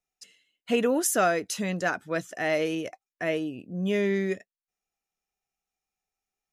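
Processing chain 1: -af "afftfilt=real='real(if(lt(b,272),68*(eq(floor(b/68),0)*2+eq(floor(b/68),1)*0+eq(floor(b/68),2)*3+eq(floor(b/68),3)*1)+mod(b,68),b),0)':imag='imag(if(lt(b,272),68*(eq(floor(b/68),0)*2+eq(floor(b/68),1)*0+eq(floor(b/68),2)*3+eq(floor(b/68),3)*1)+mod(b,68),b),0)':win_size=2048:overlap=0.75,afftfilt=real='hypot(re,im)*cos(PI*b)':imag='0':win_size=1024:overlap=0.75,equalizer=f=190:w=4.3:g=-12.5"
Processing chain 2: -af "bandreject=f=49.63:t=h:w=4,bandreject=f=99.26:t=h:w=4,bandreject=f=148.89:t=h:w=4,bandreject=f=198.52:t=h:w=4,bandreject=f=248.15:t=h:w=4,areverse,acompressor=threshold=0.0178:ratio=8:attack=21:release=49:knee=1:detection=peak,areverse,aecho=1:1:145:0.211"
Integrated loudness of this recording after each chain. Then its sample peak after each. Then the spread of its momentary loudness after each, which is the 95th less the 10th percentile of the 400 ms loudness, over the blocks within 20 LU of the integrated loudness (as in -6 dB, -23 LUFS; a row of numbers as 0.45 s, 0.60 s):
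-29.5 LUFS, -35.5 LUFS; -7.0 dBFS, -20.5 dBFS; 13 LU, 15 LU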